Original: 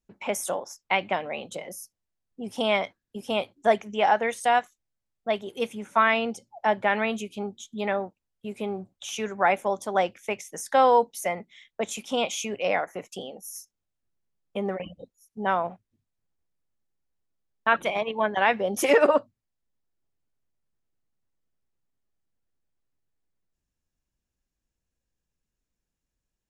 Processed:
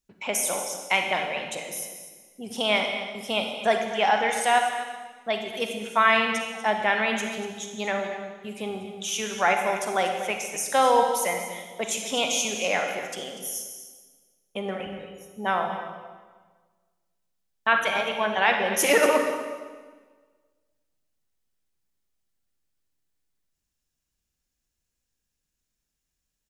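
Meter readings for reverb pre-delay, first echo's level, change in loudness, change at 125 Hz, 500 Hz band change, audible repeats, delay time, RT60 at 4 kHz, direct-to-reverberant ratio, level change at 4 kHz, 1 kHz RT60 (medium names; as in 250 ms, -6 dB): 36 ms, -13.0 dB, +1.0 dB, -1.0 dB, -0.5 dB, 1, 241 ms, 1.3 s, 3.5 dB, +6.0 dB, 1.4 s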